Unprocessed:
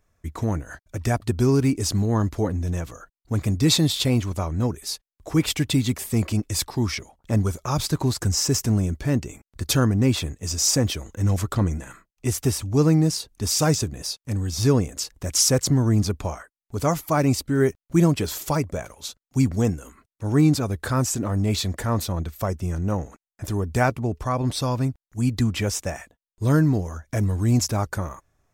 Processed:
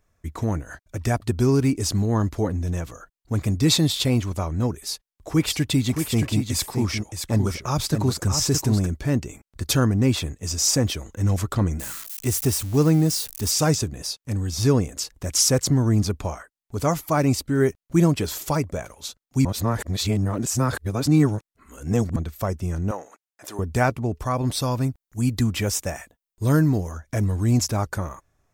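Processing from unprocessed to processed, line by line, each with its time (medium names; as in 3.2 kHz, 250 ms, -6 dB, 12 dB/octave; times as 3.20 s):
4.83–8.87 s: delay 620 ms -6.5 dB
11.79–13.51 s: zero-crossing glitches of -25 dBFS
19.45–22.16 s: reverse
22.91–23.59 s: high-pass 510 Hz
24.19–26.92 s: treble shelf 11 kHz +10 dB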